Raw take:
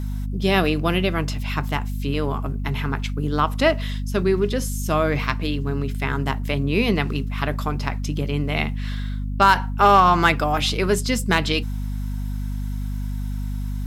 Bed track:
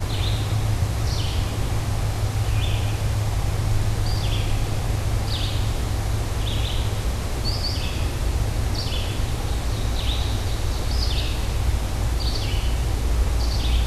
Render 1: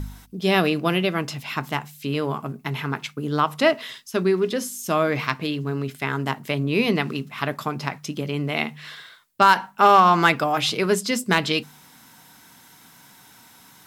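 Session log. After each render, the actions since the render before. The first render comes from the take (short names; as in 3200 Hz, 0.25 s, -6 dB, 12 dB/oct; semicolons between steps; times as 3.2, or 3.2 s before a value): de-hum 50 Hz, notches 5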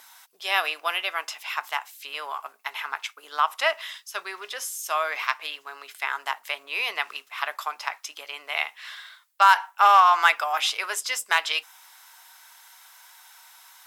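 HPF 790 Hz 24 dB/oct; dynamic EQ 4300 Hz, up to -7 dB, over -50 dBFS, Q 7.3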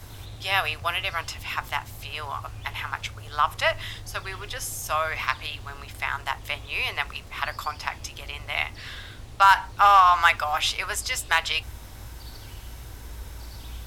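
add bed track -18 dB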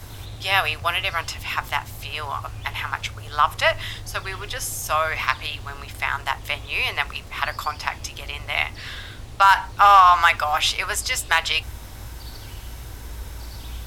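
gain +4 dB; limiter -3 dBFS, peak gain reduction 3 dB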